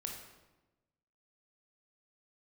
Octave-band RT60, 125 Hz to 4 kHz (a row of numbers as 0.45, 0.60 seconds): 1.4, 1.3, 1.2, 1.0, 0.90, 0.75 seconds